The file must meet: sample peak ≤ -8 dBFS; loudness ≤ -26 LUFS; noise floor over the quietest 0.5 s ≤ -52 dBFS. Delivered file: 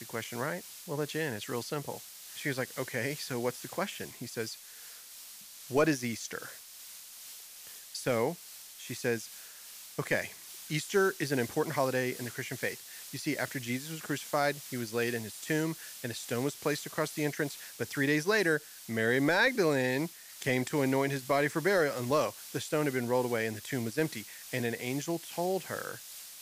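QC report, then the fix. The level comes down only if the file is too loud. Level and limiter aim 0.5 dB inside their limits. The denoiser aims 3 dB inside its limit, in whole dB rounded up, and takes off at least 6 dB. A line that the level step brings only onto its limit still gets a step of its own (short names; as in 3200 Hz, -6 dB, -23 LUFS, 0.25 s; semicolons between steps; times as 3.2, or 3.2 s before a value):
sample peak -16.0 dBFS: OK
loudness -32.5 LUFS: OK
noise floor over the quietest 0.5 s -49 dBFS: fail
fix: denoiser 6 dB, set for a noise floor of -49 dBFS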